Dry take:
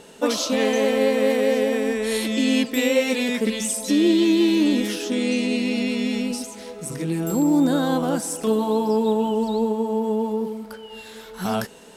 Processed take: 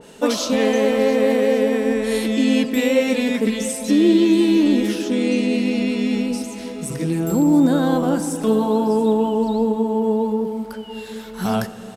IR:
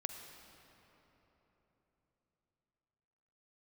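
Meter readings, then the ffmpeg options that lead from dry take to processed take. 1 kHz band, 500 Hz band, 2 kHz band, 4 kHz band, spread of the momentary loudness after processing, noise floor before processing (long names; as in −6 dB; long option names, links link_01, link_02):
+2.0 dB, +2.5 dB, +0.5 dB, −1.0 dB, 11 LU, −42 dBFS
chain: -filter_complex "[0:a]aecho=1:1:687:0.15,asplit=2[link_01][link_02];[1:a]atrim=start_sample=2205,lowshelf=frequency=290:gain=9[link_03];[link_02][link_03]afir=irnorm=-1:irlink=0,volume=-3.5dB[link_04];[link_01][link_04]amix=inputs=2:normalize=0,adynamicequalizer=threshold=0.02:dfrequency=2300:dqfactor=0.7:tfrequency=2300:tqfactor=0.7:attack=5:release=100:ratio=0.375:range=2:mode=cutabove:tftype=highshelf,volume=-2dB"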